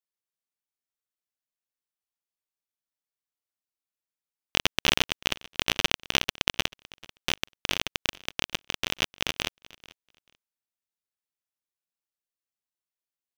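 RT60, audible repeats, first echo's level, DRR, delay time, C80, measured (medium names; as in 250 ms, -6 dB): no reverb, 1, -21.5 dB, no reverb, 439 ms, no reverb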